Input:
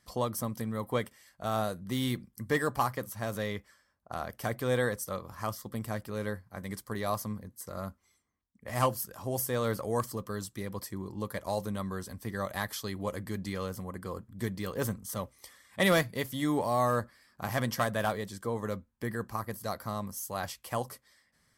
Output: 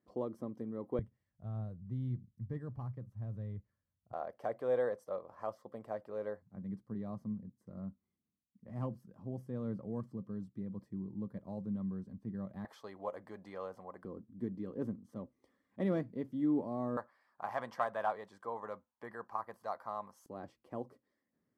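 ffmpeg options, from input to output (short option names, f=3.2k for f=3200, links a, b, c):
-af "asetnsamples=n=441:p=0,asendcmd='0.99 bandpass f 110;4.13 bandpass f 590;6.42 bandpass f 190;12.65 bandpass f 730;14.05 bandpass f 270;16.97 bandpass f 870;20.26 bandpass f 310',bandpass=f=340:t=q:w=2:csg=0"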